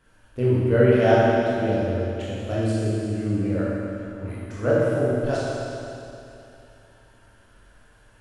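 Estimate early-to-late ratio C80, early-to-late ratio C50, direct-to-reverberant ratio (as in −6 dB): −2.0 dB, −4.0 dB, −8.5 dB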